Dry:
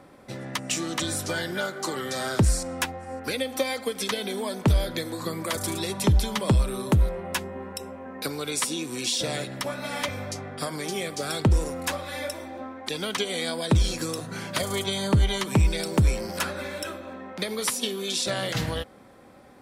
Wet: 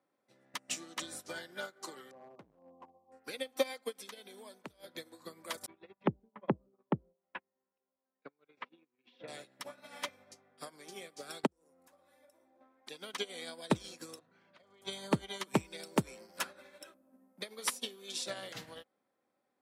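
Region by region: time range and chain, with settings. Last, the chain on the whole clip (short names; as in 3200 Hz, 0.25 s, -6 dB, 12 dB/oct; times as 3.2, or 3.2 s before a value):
2.11–3.12 brick-wall FIR low-pass 1200 Hz + hard clip -27.5 dBFS
3.96–4.84 high shelf 9000 Hz +3.5 dB + compressor 3:1, threshold -27 dBFS
5.66–9.28 gate -30 dBFS, range -22 dB + LPF 2600 Hz 24 dB/oct + treble ducked by the level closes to 350 Hz, closed at -19 dBFS
11.46–12.61 bell 3200 Hz -9.5 dB 2.2 oct + compressor 8:1, threshold -33 dBFS
14.19–14.82 LPF 3100 Hz + compressor 10:1, threshold -32 dBFS
16.94–17.41 delta modulation 64 kbps, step -45.5 dBFS + EQ curve 120 Hz 0 dB, 250 Hz +10 dB, 360 Hz -6 dB, 580 Hz -2 dB, 3900 Hz -20 dB, 7700 Hz -10 dB, 14000 Hz +8 dB
whole clip: Bessel high-pass 270 Hz, order 2; upward expander 2.5:1, over -39 dBFS; gain -2 dB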